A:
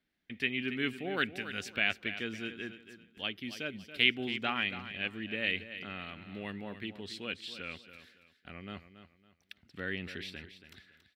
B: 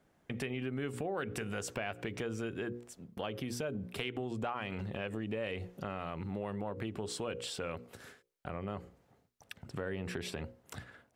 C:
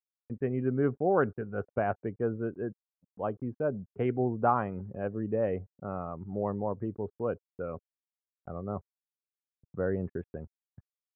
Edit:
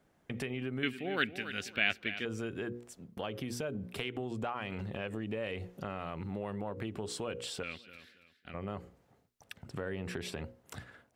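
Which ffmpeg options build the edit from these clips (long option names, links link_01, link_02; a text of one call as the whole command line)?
ffmpeg -i take0.wav -i take1.wav -filter_complex "[0:a]asplit=2[link_01][link_02];[1:a]asplit=3[link_03][link_04][link_05];[link_03]atrim=end=0.832[link_06];[link_01]atrim=start=0.828:end=2.252[link_07];[link_04]atrim=start=2.248:end=7.632[link_08];[link_02]atrim=start=7.628:end=8.542[link_09];[link_05]atrim=start=8.538[link_10];[link_06][link_07]acrossfade=duration=0.004:curve1=hsin:curve2=hsin[link_11];[link_11][link_08]acrossfade=duration=0.004:curve1=hsin:curve2=hsin[link_12];[link_12][link_09]acrossfade=duration=0.004:curve1=hsin:curve2=hsin[link_13];[link_13][link_10]acrossfade=duration=0.004:curve1=hsin:curve2=hsin" out.wav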